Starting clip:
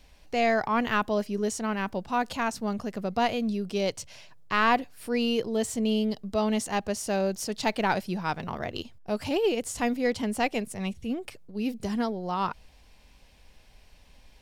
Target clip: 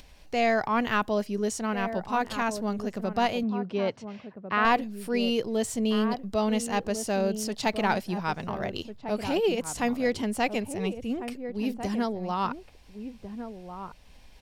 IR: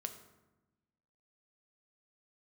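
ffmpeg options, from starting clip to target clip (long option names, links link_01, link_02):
-filter_complex "[0:a]asplit=2[link_01][link_02];[link_02]adelay=1399,volume=-9dB,highshelf=frequency=4000:gain=-31.5[link_03];[link_01][link_03]amix=inputs=2:normalize=0,acompressor=mode=upward:threshold=-46dB:ratio=2.5,asettb=1/sr,asplit=3[link_04][link_05][link_06];[link_04]atrim=end=3.434[link_07];[link_05]atrim=start=3.43:end=4.65,asetpts=PTS-STARTPTS,afade=type=in:duration=0.004:curve=qsin,afade=type=out:start_time=1.216:duration=0.004:curve=qsin,highpass=110,lowpass=2500[link_08];[link_06]atrim=start=4.646[link_09];[link_07][link_08]acrossfade=duration=0.004:curve1=hsin:curve2=qsin[link_10];[link_10][link_09]acrossfade=duration=0.004:curve1=qsin:curve2=hsin"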